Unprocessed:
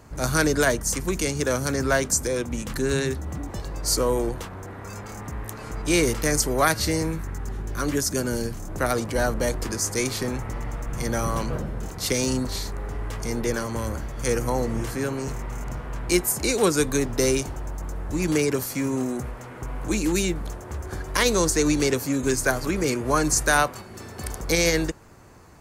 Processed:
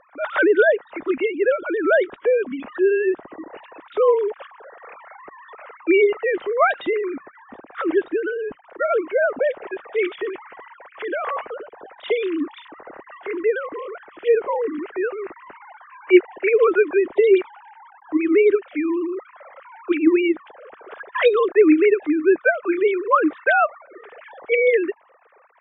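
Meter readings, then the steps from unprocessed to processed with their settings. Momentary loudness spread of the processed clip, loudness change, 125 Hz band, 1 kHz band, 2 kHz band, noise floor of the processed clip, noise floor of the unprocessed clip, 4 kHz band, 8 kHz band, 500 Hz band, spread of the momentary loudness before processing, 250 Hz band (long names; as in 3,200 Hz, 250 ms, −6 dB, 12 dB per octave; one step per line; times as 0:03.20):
16 LU, +4.5 dB, below −30 dB, +3.0 dB, +4.0 dB, −52 dBFS, −39 dBFS, −9.0 dB, below −40 dB, +7.5 dB, 13 LU, +3.0 dB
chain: three sine waves on the formant tracks
level +4 dB
AAC 48 kbit/s 32,000 Hz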